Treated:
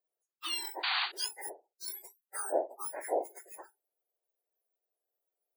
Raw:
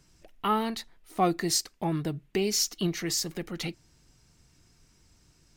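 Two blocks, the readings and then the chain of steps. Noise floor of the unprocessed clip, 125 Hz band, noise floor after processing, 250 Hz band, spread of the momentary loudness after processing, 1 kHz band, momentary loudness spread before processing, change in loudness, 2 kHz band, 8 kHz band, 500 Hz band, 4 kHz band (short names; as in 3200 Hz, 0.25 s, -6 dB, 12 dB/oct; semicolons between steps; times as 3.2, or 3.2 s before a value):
-64 dBFS, under -40 dB, under -85 dBFS, -21.0 dB, 14 LU, -8.0 dB, 10 LU, -6.0 dB, +0.5 dB, -10.0 dB, -4.5 dB, -4.5 dB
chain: spectrum mirrored in octaves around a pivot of 1900 Hz; elliptic high-pass 340 Hz, stop band 40 dB; painted sound noise, 0.83–1.12, 690–4700 Hz -27 dBFS; spectral noise reduction 28 dB; ending taper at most 230 dB/s; gain -4 dB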